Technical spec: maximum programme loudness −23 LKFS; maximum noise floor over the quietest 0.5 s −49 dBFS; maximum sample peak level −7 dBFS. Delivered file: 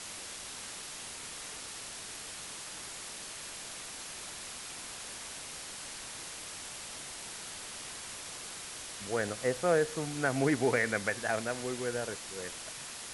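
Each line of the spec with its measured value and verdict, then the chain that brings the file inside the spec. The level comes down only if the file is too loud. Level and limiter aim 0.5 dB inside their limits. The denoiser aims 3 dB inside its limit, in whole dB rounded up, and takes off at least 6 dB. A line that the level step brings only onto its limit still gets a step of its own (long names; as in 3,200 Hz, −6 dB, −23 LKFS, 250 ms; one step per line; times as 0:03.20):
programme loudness −36.0 LKFS: in spec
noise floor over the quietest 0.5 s −44 dBFS: out of spec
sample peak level −15.5 dBFS: in spec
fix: broadband denoise 8 dB, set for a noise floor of −44 dBFS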